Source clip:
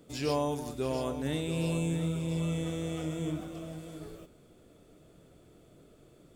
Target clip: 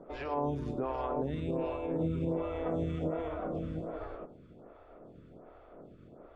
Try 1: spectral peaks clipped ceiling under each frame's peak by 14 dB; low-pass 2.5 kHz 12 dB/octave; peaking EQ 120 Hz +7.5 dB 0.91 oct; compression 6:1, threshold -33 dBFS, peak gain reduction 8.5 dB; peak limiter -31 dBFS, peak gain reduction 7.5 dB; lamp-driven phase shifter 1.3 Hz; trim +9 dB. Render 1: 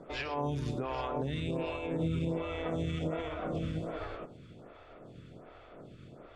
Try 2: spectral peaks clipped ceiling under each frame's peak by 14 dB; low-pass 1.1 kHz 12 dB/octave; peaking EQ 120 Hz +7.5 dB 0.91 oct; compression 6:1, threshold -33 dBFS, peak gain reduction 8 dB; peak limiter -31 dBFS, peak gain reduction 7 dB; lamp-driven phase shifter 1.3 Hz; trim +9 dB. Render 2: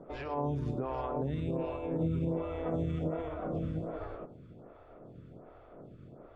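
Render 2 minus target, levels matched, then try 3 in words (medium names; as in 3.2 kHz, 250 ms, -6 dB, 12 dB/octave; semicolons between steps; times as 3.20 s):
125 Hz band +3.0 dB
spectral peaks clipped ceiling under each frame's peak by 14 dB; low-pass 1.1 kHz 12 dB/octave; compression 6:1, threshold -33 dBFS, peak gain reduction 6.5 dB; peak limiter -31 dBFS, peak gain reduction 6.5 dB; lamp-driven phase shifter 1.3 Hz; trim +9 dB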